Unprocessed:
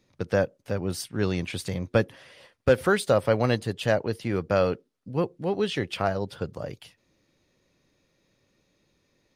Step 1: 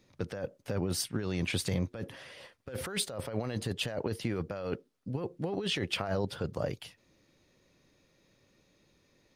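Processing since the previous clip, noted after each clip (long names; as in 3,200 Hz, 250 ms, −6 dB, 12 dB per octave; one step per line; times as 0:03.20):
compressor whose output falls as the input rises −30 dBFS, ratio −1
level −3.5 dB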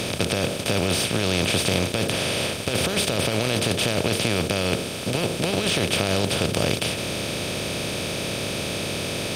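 compressor on every frequency bin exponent 0.2
level +2.5 dB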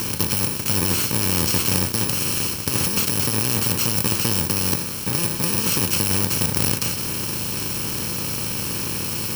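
samples in bit-reversed order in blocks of 64 samples
level +2 dB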